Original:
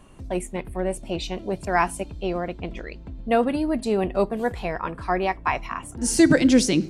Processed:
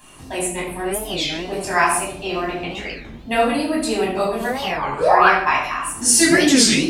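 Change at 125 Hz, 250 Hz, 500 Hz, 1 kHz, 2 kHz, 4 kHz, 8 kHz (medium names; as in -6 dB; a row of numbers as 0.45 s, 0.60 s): -1.0 dB, +1.0 dB, +3.0 dB, +8.0 dB, +9.5 dB, +11.5 dB, +12.0 dB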